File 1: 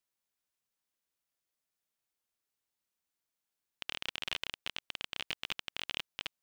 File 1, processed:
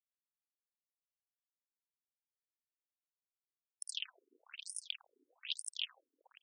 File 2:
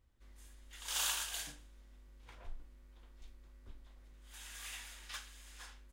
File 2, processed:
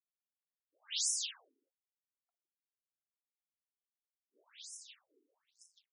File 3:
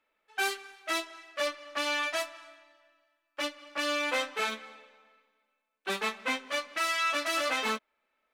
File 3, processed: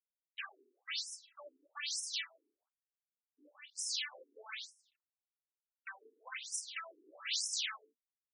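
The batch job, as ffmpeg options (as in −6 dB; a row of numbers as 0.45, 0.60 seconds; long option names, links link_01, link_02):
-af "equalizer=frequency=3200:width_type=o:width=1.3:gain=12.5,asoftclip=type=hard:threshold=-18dB,aderivative,aeval=exprs='sgn(val(0))*max(abs(val(0))-0.00316,0)':channel_layout=same,aphaser=in_gain=1:out_gain=1:delay=4:decay=0.58:speed=1.6:type=sinusoidal,afftfilt=real='re*lt(hypot(re,im),0.0794)':imag='im*lt(hypot(re,im),0.0794)':win_size=1024:overlap=0.75,aecho=1:1:53|83|161:0.237|0.1|0.299,afftfilt=real='re*between(b*sr/1024,310*pow(7500/310,0.5+0.5*sin(2*PI*1.1*pts/sr))/1.41,310*pow(7500/310,0.5+0.5*sin(2*PI*1.1*pts/sr))*1.41)':imag='im*between(b*sr/1024,310*pow(7500/310,0.5+0.5*sin(2*PI*1.1*pts/sr))/1.41,310*pow(7500/310,0.5+0.5*sin(2*PI*1.1*pts/sr))*1.41)':win_size=1024:overlap=0.75,volume=2dB"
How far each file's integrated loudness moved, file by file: −4.0, +5.0, −8.5 LU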